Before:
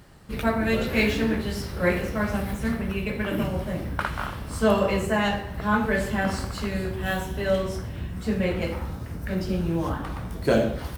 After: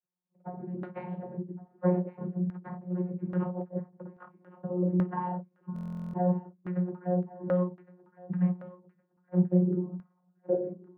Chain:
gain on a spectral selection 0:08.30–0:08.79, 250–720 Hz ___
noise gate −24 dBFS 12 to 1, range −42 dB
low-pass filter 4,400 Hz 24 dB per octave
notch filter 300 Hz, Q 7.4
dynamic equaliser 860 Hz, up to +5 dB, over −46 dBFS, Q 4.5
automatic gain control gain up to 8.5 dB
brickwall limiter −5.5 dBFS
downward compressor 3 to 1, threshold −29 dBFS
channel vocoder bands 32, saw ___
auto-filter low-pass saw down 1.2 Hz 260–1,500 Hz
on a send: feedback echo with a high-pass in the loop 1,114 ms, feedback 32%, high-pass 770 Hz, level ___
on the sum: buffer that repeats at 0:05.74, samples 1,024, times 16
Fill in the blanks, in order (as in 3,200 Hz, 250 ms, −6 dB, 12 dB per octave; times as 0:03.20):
−14 dB, 180 Hz, −14 dB